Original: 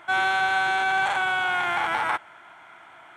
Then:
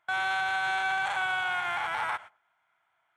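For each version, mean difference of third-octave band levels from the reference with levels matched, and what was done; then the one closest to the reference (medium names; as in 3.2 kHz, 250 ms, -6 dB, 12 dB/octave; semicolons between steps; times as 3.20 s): 4.0 dB: gate -37 dBFS, range -25 dB; peaking EQ 300 Hz -11 dB 1.1 oct; peak limiter -22.5 dBFS, peak gain reduction 8.5 dB; on a send: tape echo 101 ms, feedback 31%, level -24 dB, low-pass 1.3 kHz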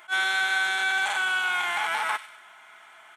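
6.0 dB: tilt EQ +3.5 dB/octave; comb 4.7 ms, depth 43%; on a send: feedback echo behind a high-pass 97 ms, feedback 42%, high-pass 2.2 kHz, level -11 dB; on the sum: attacks held to a fixed rise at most 420 dB/s; trim -4.5 dB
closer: first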